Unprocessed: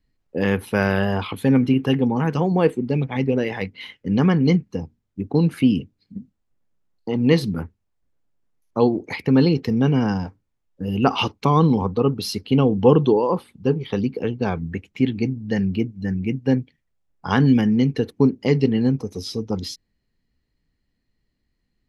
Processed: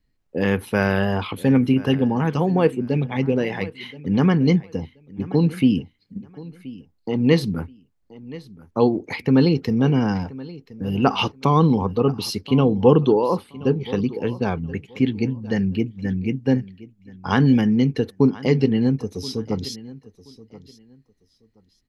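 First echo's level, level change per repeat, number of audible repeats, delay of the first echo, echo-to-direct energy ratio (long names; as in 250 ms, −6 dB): −19.0 dB, −13.0 dB, 2, 1,027 ms, −19.0 dB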